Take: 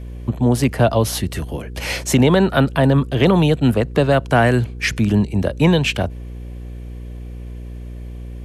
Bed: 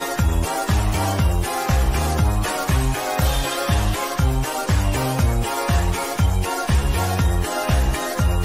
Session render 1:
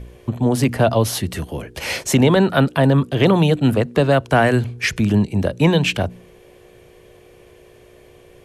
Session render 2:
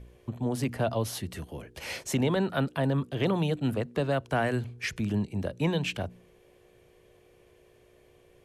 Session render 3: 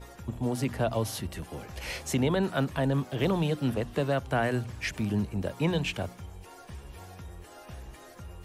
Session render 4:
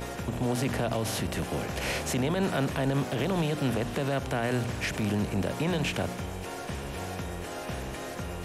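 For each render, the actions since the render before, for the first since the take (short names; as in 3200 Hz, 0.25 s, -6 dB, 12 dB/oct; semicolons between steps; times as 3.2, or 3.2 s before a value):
de-hum 60 Hz, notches 5
gain -12.5 dB
add bed -25.5 dB
per-bin compression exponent 0.6; limiter -19.5 dBFS, peak gain reduction 7 dB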